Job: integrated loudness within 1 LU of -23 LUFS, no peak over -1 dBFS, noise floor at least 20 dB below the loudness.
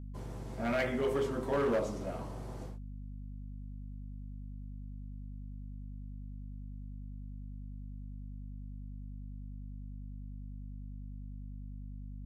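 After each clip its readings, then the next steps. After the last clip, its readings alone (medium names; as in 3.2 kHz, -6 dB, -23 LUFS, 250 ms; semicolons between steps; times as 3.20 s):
clipped samples 0.6%; clipping level -26.0 dBFS; hum 50 Hz; highest harmonic 250 Hz; hum level -41 dBFS; loudness -40.5 LUFS; peak level -26.0 dBFS; loudness target -23.0 LUFS
-> clip repair -26 dBFS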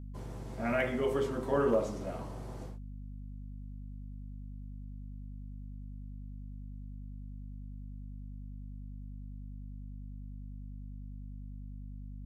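clipped samples 0.0%; hum 50 Hz; highest harmonic 250 Hz; hum level -41 dBFS
-> hum notches 50/100/150/200/250 Hz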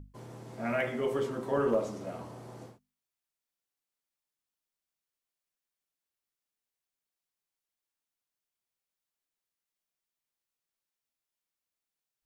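hum not found; loudness -32.0 LUFS; peak level -17.5 dBFS; loudness target -23.0 LUFS
-> trim +9 dB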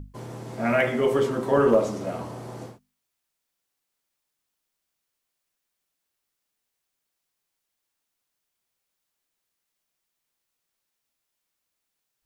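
loudness -23.0 LUFS; peak level -8.5 dBFS; noise floor -81 dBFS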